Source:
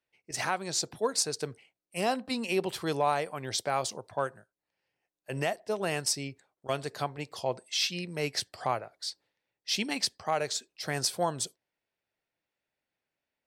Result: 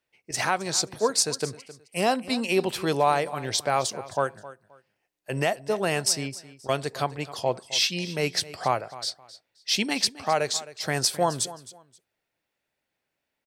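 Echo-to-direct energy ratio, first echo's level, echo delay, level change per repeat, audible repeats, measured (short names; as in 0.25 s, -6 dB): -17.0 dB, -17.0 dB, 0.264 s, -12.5 dB, 2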